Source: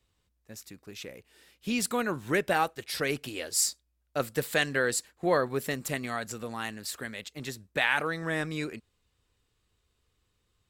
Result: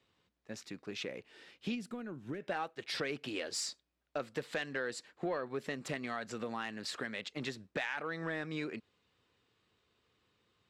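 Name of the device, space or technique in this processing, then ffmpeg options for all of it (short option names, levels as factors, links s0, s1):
AM radio: -filter_complex "[0:a]highpass=160,lowpass=4200,acompressor=threshold=0.0112:ratio=4,asoftclip=type=tanh:threshold=0.0398,asplit=3[s0][s1][s2];[s0]afade=t=out:st=1.74:d=0.02[s3];[s1]equalizer=f=500:t=o:w=1:g=-6,equalizer=f=1000:t=o:w=1:g=-11,equalizer=f=2000:t=o:w=1:g=-8,equalizer=f=4000:t=o:w=1:g=-11,equalizer=f=8000:t=o:w=1:g=-7,afade=t=in:st=1.74:d=0.02,afade=t=out:st=2.4:d=0.02[s4];[s2]afade=t=in:st=2.4:d=0.02[s5];[s3][s4][s5]amix=inputs=3:normalize=0,volume=1.58"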